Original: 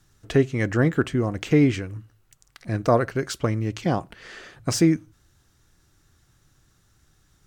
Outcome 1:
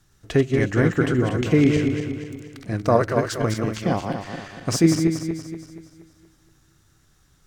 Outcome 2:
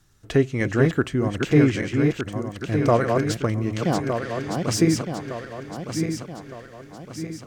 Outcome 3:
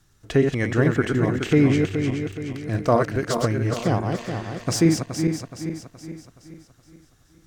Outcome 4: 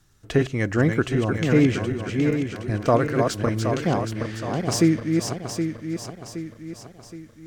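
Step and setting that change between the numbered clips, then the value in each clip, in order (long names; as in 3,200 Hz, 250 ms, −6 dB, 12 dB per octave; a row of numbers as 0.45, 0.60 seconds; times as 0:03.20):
feedback delay that plays each chunk backwards, delay time: 118, 606, 211, 385 milliseconds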